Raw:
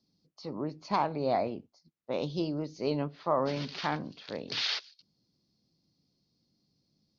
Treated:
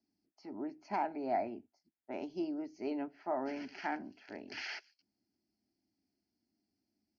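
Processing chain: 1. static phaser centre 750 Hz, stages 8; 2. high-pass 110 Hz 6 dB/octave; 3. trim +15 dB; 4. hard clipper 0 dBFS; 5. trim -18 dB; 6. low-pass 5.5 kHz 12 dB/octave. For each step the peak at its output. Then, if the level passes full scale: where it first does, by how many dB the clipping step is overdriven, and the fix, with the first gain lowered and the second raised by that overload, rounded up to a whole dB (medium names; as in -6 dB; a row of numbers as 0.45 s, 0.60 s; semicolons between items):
-19.0 dBFS, -19.0 dBFS, -4.0 dBFS, -4.0 dBFS, -22.0 dBFS, -22.0 dBFS; nothing clips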